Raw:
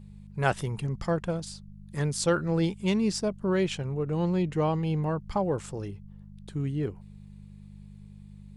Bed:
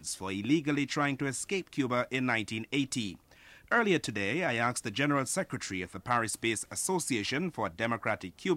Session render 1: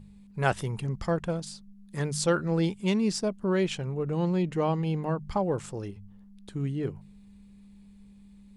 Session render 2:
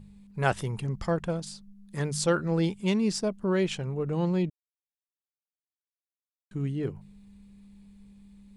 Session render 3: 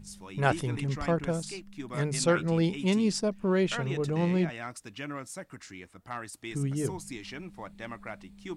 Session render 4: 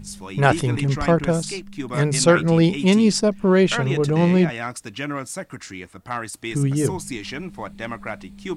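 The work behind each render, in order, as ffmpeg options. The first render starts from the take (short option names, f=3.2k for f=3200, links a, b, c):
-af "bandreject=f=50:t=h:w=4,bandreject=f=100:t=h:w=4,bandreject=f=150:t=h:w=4"
-filter_complex "[0:a]asplit=3[a][b][c];[a]atrim=end=4.5,asetpts=PTS-STARTPTS,afade=t=out:st=4.496:d=0.004:c=hsin[d];[b]atrim=start=4.5:end=6.51,asetpts=PTS-STARTPTS,volume=0[e];[c]atrim=start=6.51,asetpts=PTS-STARTPTS,afade=t=in:d=0.004:c=hsin[f];[d][e][f]concat=n=3:v=0:a=1"
-filter_complex "[1:a]volume=-9.5dB[a];[0:a][a]amix=inputs=2:normalize=0"
-af "volume=10dB,alimiter=limit=-3dB:level=0:latency=1"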